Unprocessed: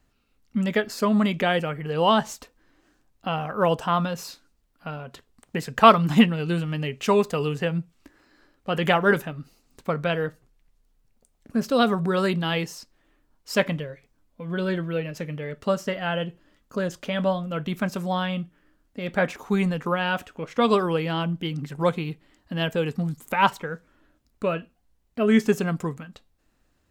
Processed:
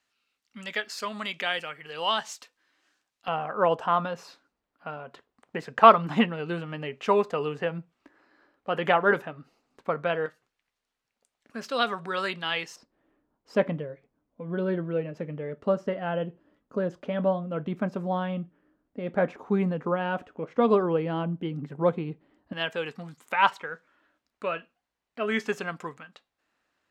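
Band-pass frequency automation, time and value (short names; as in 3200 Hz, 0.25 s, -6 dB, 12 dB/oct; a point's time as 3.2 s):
band-pass, Q 0.57
3500 Hz
from 3.28 s 880 Hz
from 10.26 s 2200 Hz
from 12.76 s 410 Hz
from 22.53 s 1700 Hz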